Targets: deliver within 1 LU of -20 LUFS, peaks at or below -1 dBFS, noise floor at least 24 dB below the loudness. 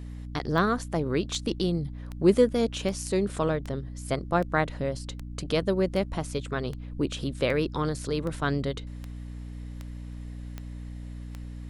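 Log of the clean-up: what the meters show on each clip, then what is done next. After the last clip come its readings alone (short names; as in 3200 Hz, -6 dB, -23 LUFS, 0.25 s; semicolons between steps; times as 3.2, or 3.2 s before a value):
clicks 15; hum 60 Hz; harmonics up to 300 Hz; hum level -36 dBFS; loudness -28.5 LUFS; peak -8.5 dBFS; loudness target -20.0 LUFS
-> de-click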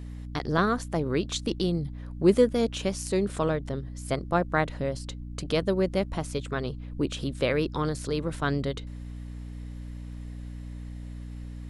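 clicks 0; hum 60 Hz; harmonics up to 300 Hz; hum level -36 dBFS
-> notches 60/120/180/240/300 Hz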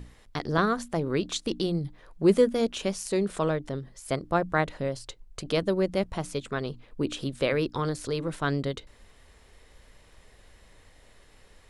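hum none; loudness -28.5 LUFS; peak -10.0 dBFS; loudness target -20.0 LUFS
-> gain +8.5 dB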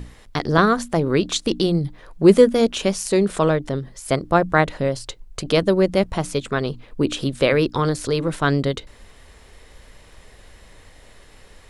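loudness -20.0 LUFS; peak -1.5 dBFS; noise floor -48 dBFS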